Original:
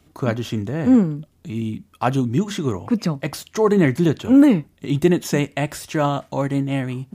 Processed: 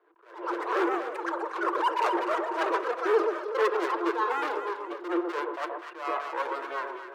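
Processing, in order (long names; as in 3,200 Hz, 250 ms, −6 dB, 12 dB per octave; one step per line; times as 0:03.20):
running median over 41 samples
low-pass filter 3,700 Hz 24 dB per octave
delay with pitch and tempo change per echo 181 ms, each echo +7 semitones, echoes 3, each echo −6 dB
thirty-one-band graphic EQ 500 Hz −3 dB, 1,000 Hz +12 dB, 1,600 Hz +7 dB
in parallel at −1.5 dB: speech leveller within 4 dB 2 s
on the sum: hard clipping −15.5 dBFS, distortion −6 dB
reverb reduction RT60 1.9 s
Chebyshev high-pass with heavy ripple 330 Hz, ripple 9 dB
on a send: delay that swaps between a low-pass and a high-pass 124 ms, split 1,100 Hz, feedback 63%, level −5 dB
on the sum: spring reverb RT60 1.1 s, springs 33 ms, chirp 75 ms, DRR 13.5 dB
level that may rise only so fast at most 110 dB per second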